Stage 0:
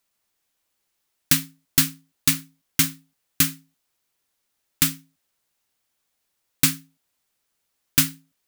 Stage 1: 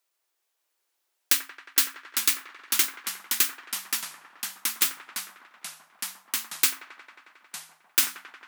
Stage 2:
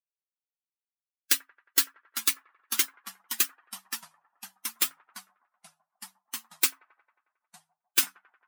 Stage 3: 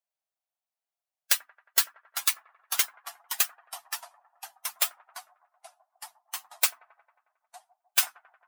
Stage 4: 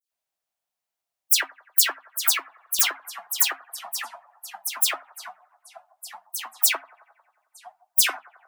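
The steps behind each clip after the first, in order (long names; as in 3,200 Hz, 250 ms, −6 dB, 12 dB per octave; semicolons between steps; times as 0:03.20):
elliptic high-pass filter 340 Hz, stop band 40 dB; delay with a band-pass on its return 90 ms, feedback 81%, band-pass 930 Hz, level −9 dB; delay with pitch and tempo change per echo 606 ms, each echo −3 semitones, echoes 3, each echo −6 dB; level −2 dB
spectral dynamics exaggerated over time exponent 2; level +1.5 dB
high-pass with resonance 680 Hz, resonance Q 4.9
all-pass dispersion lows, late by 119 ms, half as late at 2,800 Hz; level +5.5 dB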